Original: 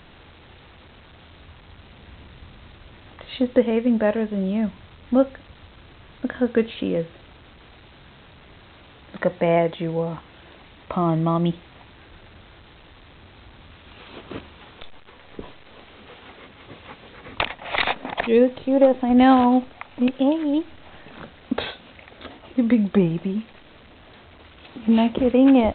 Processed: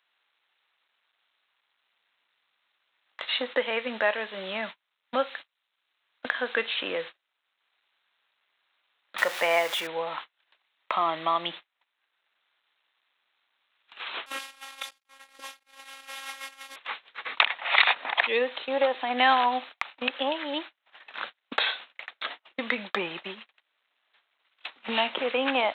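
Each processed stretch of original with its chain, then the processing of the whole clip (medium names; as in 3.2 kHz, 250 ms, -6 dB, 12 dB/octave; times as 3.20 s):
9.18–9.87 s: jump at every zero crossing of -33 dBFS + bass shelf 100 Hz -9 dB
14.26–16.76 s: one-bit delta coder 64 kbps, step -38.5 dBFS + robot voice 270 Hz
whole clip: high-pass 1.2 kHz 12 dB/octave; gate -46 dBFS, range -40 dB; three bands compressed up and down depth 40%; trim +7 dB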